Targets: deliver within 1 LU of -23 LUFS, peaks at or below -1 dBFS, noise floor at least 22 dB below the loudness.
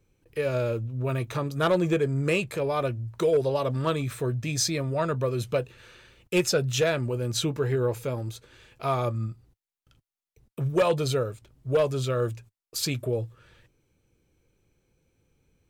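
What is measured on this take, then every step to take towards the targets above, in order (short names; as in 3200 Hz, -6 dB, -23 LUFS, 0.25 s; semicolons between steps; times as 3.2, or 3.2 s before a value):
clipped 0.3%; flat tops at -16.0 dBFS; loudness -27.5 LUFS; peak -16.0 dBFS; loudness target -23.0 LUFS
-> clip repair -16 dBFS; gain +4.5 dB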